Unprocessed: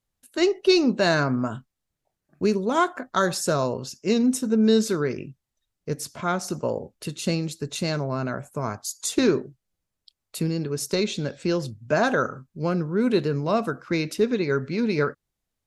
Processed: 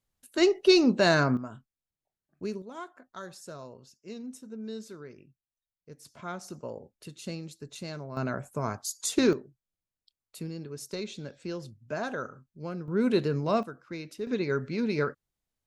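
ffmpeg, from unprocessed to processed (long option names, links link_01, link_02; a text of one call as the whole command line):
ffmpeg -i in.wav -af "asetnsamples=nb_out_samples=441:pad=0,asendcmd='1.37 volume volume -12.5dB;2.62 volume volume -20dB;6.05 volume volume -12.5dB;8.17 volume volume -3dB;9.33 volume volume -12dB;12.88 volume volume -3.5dB;13.63 volume volume -14dB;14.27 volume volume -5dB',volume=-1.5dB" out.wav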